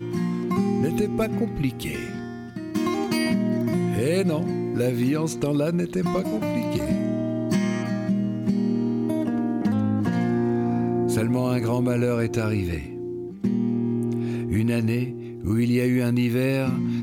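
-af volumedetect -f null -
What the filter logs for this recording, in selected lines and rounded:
mean_volume: -23.6 dB
max_volume: -10.8 dB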